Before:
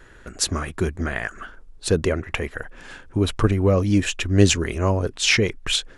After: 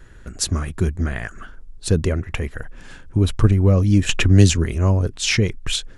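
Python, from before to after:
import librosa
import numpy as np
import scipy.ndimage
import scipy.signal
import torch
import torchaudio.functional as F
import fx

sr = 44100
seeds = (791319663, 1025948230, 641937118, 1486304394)

y = fx.bass_treble(x, sr, bass_db=10, treble_db=4)
y = fx.band_squash(y, sr, depth_pct=70, at=(4.09, 4.65))
y = y * 10.0 ** (-3.5 / 20.0)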